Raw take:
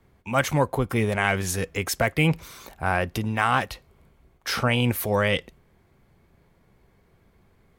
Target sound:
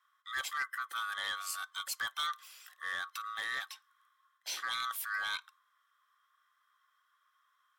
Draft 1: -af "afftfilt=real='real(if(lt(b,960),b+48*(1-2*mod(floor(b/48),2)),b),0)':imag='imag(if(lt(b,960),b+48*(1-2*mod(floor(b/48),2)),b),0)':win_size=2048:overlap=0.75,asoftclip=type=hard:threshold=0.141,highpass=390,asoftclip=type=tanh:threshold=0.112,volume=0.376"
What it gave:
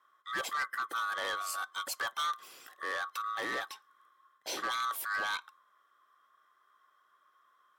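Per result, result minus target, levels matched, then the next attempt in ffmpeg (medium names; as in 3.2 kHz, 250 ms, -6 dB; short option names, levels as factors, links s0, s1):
500 Hz band +13.5 dB; hard clipper: distortion +16 dB
-af "afftfilt=real='real(if(lt(b,960),b+48*(1-2*mod(floor(b/48),2)),b),0)':imag='imag(if(lt(b,960),b+48*(1-2*mod(floor(b/48),2)),b),0)':win_size=2048:overlap=0.75,asoftclip=type=hard:threshold=0.141,highpass=1600,asoftclip=type=tanh:threshold=0.112,volume=0.376"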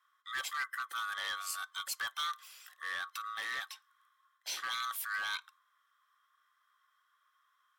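hard clipper: distortion +16 dB
-af "afftfilt=real='real(if(lt(b,960),b+48*(1-2*mod(floor(b/48),2)),b),0)':imag='imag(if(lt(b,960),b+48*(1-2*mod(floor(b/48),2)),b),0)':win_size=2048:overlap=0.75,asoftclip=type=hard:threshold=0.299,highpass=1600,asoftclip=type=tanh:threshold=0.112,volume=0.376"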